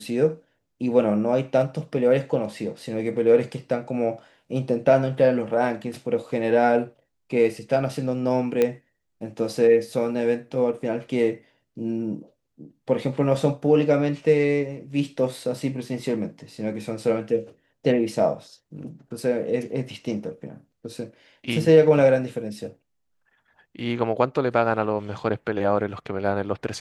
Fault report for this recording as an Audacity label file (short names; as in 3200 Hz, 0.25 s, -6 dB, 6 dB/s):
8.620000	8.620000	pop -9 dBFS